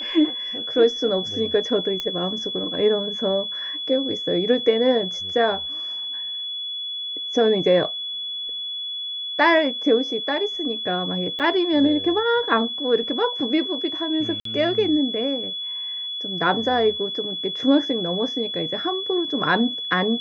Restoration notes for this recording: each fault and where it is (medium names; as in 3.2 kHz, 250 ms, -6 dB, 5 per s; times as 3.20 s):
whine 3.4 kHz -27 dBFS
2.00 s: pop -13 dBFS
11.39–11.40 s: dropout 7.4 ms
14.40–14.45 s: dropout 53 ms